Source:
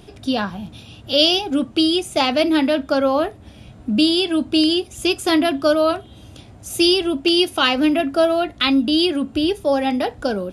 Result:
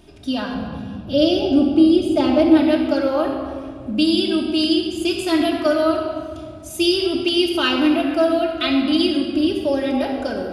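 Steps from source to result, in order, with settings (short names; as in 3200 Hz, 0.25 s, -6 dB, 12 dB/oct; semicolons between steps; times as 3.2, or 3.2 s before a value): 0.54–2.57 tilt shelf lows +7.5 dB, about 870 Hz; shoebox room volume 3600 m³, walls mixed, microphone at 2.7 m; gain -6 dB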